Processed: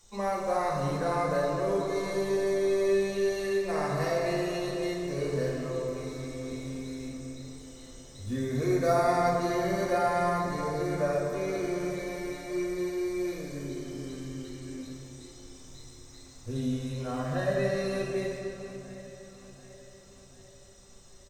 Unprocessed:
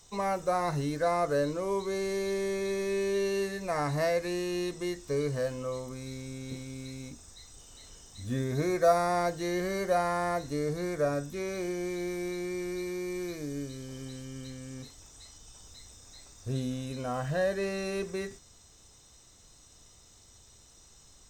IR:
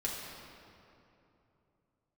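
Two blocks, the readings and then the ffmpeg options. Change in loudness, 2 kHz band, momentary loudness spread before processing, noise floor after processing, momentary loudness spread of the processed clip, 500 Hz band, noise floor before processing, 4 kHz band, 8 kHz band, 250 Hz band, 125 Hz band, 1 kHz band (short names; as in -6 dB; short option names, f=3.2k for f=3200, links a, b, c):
+1.5 dB, +1.0 dB, 20 LU, -52 dBFS, 19 LU, +2.0 dB, -58 dBFS, 0.0 dB, -1.0 dB, +2.0 dB, +1.5 dB, +1.5 dB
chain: -filter_complex "[0:a]aecho=1:1:742|1484|2226|2968|3710:0.15|0.0823|0.0453|0.0249|0.0137[a];[1:a]atrim=start_sample=2205[b];[a][b]afir=irnorm=-1:irlink=0,volume=-3dB"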